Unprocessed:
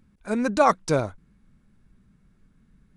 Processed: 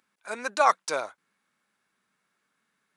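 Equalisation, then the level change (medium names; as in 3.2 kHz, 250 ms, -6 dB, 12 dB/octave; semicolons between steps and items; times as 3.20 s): high-pass 820 Hz 12 dB/octave; +1.0 dB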